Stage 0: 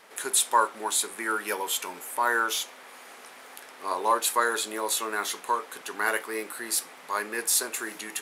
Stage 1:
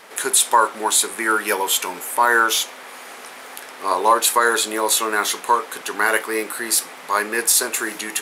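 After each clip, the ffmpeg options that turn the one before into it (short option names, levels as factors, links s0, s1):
-af "alimiter=level_in=4.22:limit=0.891:release=50:level=0:latency=1,volume=0.708"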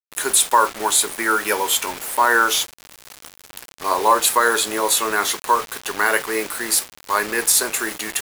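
-af "acrusher=bits=4:mix=0:aa=0.000001"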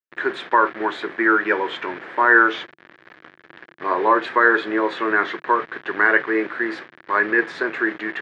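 -af "highpass=140,equalizer=f=150:t=q:w=4:g=4,equalizer=f=340:t=q:w=4:g=9,equalizer=f=840:t=q:w=4:g=-4,equalizer=f=1700:t=q:w=4:g=8,equalizer=f=2700:t=q:w=4:g=-5,lowpass=f=2700:w=0.5412,lowpass=f=2700:w=1.3066,volume=0.891"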